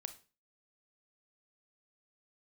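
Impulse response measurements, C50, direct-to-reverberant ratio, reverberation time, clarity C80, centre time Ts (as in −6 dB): 14.0 dB, 9.5 dB, 0.35 s, 19.5 dB, 6 ms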